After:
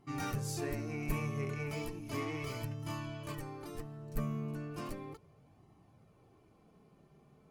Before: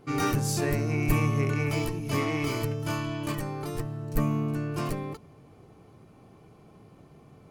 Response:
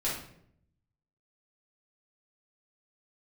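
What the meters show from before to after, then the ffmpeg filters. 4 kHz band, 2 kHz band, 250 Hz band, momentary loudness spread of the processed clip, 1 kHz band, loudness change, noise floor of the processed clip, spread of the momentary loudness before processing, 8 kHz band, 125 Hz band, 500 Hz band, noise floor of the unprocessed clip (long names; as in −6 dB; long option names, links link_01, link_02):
−10.5 dB, −10.5 dB, −11.0 dB, 9 LU, −10.5 dB, −11.0 dB, −66 dBFS, 8 LU, −10.5 dB, −11.0 dB, −10.0 dB, −55 dBFS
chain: -af "flanger=delay=1:depth=4.1:regen=-39:speed=0.35:shape=sinusoidal,volume=-6.5dB"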